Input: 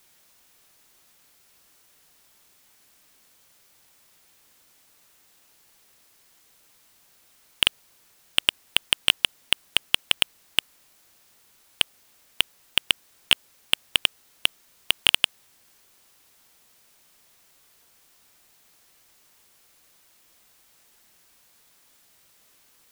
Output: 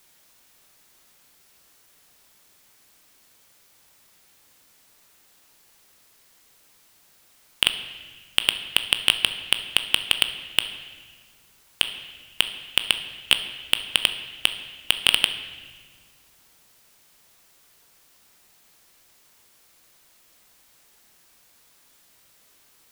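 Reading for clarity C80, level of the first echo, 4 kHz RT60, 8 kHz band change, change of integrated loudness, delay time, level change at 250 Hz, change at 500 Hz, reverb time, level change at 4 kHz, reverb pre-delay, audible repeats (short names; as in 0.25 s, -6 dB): 11.5 dB, none, 1.4 s, +1.0 dB, +1.5 dB, none, +2.0 dB, +1.5 dB, 1.5 s, +1.5 dB, 9 ms, none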